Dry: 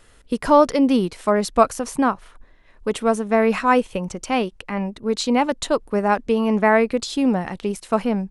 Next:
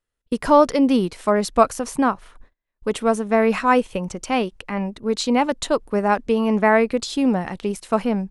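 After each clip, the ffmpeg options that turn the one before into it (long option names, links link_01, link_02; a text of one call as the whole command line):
ffmpeg -i in.wav -af "agate=range=-31dB:threshold=-44dB:ratio=16:detection=peak" out.wav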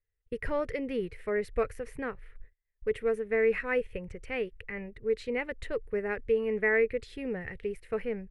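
ffmpeg -i in.wav -af "firequalizer=gain_entry='entry(100,0);entry(190,-17);entry(290,-20);entry(440,-4);entry(650,-21);entry(1000,-25);entry(1900,-2);entry(3300,-20);entry(6500,-29);entry(10000,-21)':delay=0.05:min_phase=1" out.wav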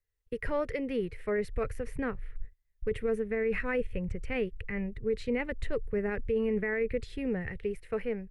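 ffmpeg -i in.wav -filter_complex "[0:a]acrossover=split=230|870[link_01][link_02][link_03];[link_01]dynaudnorm=framelen=330:gausssize=9:maxgain=10dB[link_04];[link_04][link_02][link_03]amix=inputs=3:normalize=0,alimiter=limit=-22dB:level=0:latency=1:release=13" out.wav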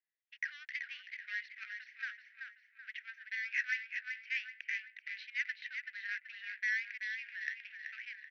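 ffmpeg -i in.wav -filter_complex "[0:a]asplit=2[link_01][link_02];[link_02]aecho=0:1:381|762|1143|1524|1905|2286:0.501|0.231|0.106|0.0488|0.0224|0.0103[link_03];[link_01][link_03]amix=inputs=2:normalize=0,adynamicsmooth=sensitivity=7:basefreq=2500,asuperpass=centerf=3100:order=20:qfactor=0.69,volume=3dB" out.wav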